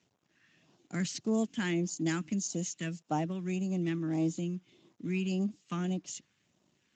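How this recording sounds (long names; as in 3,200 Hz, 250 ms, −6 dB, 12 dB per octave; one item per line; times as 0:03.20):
phaser sweep stages 2, 1.7 Hz, lowest notch 680–1,900 Hz
a quantiser's noise floor 12 bits, dither none
Speex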